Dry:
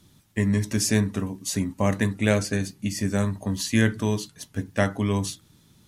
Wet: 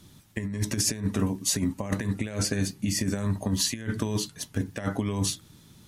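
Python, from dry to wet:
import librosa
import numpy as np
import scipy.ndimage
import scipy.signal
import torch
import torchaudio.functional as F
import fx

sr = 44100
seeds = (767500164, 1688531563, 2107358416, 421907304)

y = fx.over_compress(x, sr, threshold_db=-26.0, ratio=-0.5)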